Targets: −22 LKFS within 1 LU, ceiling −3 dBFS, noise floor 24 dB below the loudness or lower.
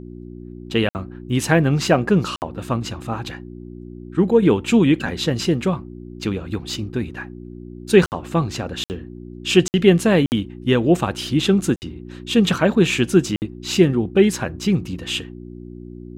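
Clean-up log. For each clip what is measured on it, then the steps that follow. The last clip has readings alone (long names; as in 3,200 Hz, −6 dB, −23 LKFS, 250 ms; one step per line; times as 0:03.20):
number of dropouts 8; longest dropout 59 ms; mains hum 60 Hz; hum harmonics up to 360 Hz; level of the hum −35 dBFS; integrated loudness −19.5 LKFS; sample peak −2.0 dBFS; target loudness −22.0 LKFS
→ repair the gap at 0:00.89/0:02.36/0:08.06/0:08.84/0:09.68/0:10.26/0:11.76/0:13.36, 59 ms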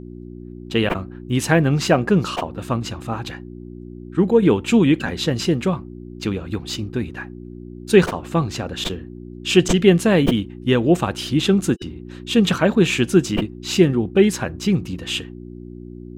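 number of dropouts 0; mains hum 60 Hz; hum harmonics up to 360 Hz; level of the hum −35 dBFS
→ hum removal 60 Hz, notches 6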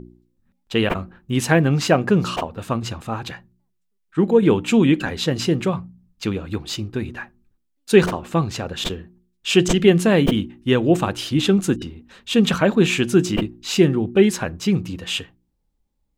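mains hum none found; integrated loudness −20.0 LKFS; sample peak −2.0 dBFS; target loudness −22.0 LKFS
→ level −2 dB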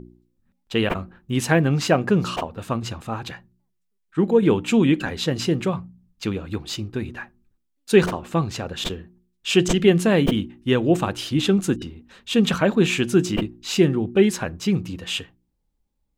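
integrated loudness −22.0 LKFS; sample peak −4.0 dBFS; background noise floor −73 dBFS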